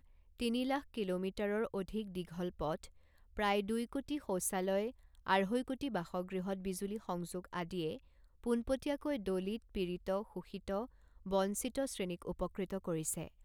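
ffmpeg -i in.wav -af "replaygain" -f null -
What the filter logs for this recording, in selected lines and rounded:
track_gain = +18.2 dB
track_peak = 0.089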